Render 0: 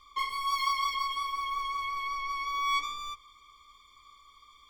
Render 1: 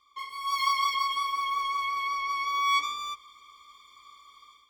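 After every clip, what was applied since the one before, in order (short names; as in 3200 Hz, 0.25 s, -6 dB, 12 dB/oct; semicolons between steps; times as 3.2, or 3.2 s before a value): HPF 230 Hz 6 dB/oct; AGC gain up to 12 dB; gain -8 dB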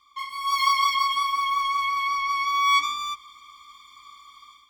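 band shelf 520 Hz -13 dB 1.1 oct; gain +5 dB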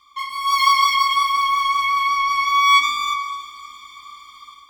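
plate-style reverb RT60 3.6 s, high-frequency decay 0.85×, DRR 9 dB; gain +5.5 dB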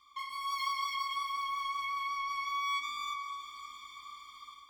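compressor 2:1, threshold -32 dBFS, peak gain reduction 12.5 dB; gain -8.5 dB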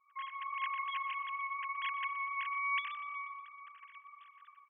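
sine-wave speech; feedback echo 0.121 s, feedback 59%, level -18 dB; gain -2.5 dB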